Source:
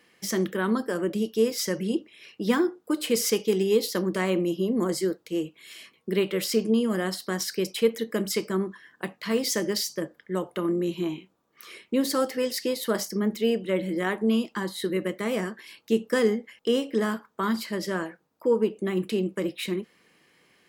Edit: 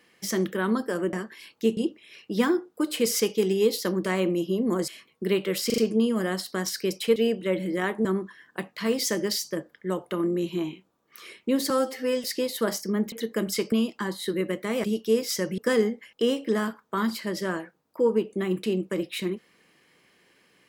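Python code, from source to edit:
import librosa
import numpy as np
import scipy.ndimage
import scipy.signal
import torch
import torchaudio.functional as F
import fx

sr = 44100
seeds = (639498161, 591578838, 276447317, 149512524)

y = fx.edit(x, sr, fx.swap(start_s=1.13, length_s=0.74, other_s=15.4, other_length_s=0.64),
    fx.cut(start_s=4.98, length_s=0.76),
    fx.stutter(start_s=6.52, slice_s=0.04, count=4),
    fx.swap(start_s=7.9, length_s=0.6, other_s=13.39, other_length_s=0.89),
    fx.stretch_span(start_s=12.15, length_s=0.36, factor=1.5), tone=tone)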